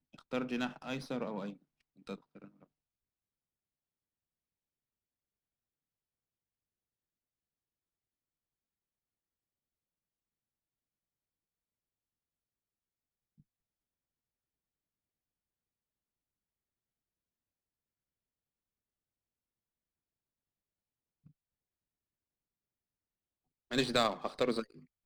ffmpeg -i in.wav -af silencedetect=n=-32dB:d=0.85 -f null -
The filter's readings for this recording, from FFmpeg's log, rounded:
silence_start: 2.14
silence_end: 23.72 | silence_duration: 21.58